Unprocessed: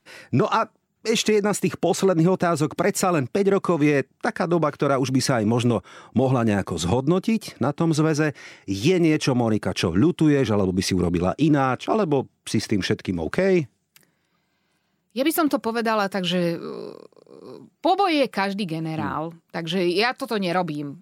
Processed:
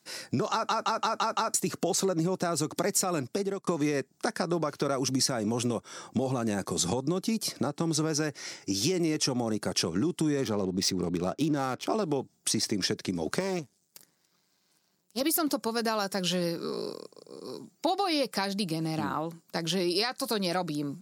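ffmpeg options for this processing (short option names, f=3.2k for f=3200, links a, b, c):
-filter_complex "[0:a]asettb=1/sr,asplit=3[a][b][c];[a]atrim=end=10.414[d];[b]atrim=start=10.41:end=11.86,asetpts=PTS-STARTPTS,afade=t=in:d=0.004:c=qsin,afade=t=out:st=1.446:d=0.004:c=qsin,adynamicsmooth=sensitivity=6.5:basefreq=2.4k[e];[c]atrim=start=11.856[f];[d][e]acrossfade=d=0.004:c1=hsin:c2=qsin[g];[g][f]acrossfade=d=0.004:c1=qsin:c2=hsin,asettb=1/sr,asplit=3[h][i][j];[h]atrim=end=13.404[k];[i]atrim=start=13.4:end=15.21,asetpts=PTS-STARTPTS,afade=t=in:d=0.004:c=qsin,afade=t=out:st=1.806:d=0.004:c=qsin,aeval=exprs='max(val(0),0)':c=same[l];[j]atrim=start=15.206[m];[k][l]acrossfade=d=0.004:c1=hsin:c2=qsin[n];[n][m]acrossfade=d=0.004:c1=qsin:c2=hsin,asplit=8[o][p][q][r][s][t][u][v];[o]atrim=end=0.692[w];[p]atrim=start=0.518:end=0.692[x];[q]atrim=start=0.518:end=0.692[y];[r]atrim=start=0.518:end=0.692[z];[s]atrim=start=0.518:end=0.692[aa];[t]atrim=start=0.518:end=0.692[ab];[u]atrim=start=1.538:end=3.67,asetpts=PTS-STARTPTS,afade=t=out:st=1.672:d=0.46[ac];[v]atrim=start=3.67,asetpts=PTS-STARTPTS,afade=t=in:d=0.004:c=hsin[ad];[w][x]acrossfade=d=0.004:c1=hsin:c2=hsin[ae];[ae][y]acrossfade=d=0.004:c1=hsin:c2=hsin[af];[af][z]acrossfade=d=0.004:c1=hsin:c2=hsin[ag];[ag][aa]acrossfade=d=0.004:c1=hsin:c2=hsin[ah];[ah][ab]acrossfade=d=0.004:c1=hsin:c2=hsin[ai];[ac][ad]concat=n=2:v=0:a=1[aj];[ai][aj]acrossfade=d=0.004:c1=hsin:c2=hsin,highshelf=f=3.8k:t=q:w=1.5:g=8.5,acompressor=threshold=-27dB:ratio=3,highpass=130"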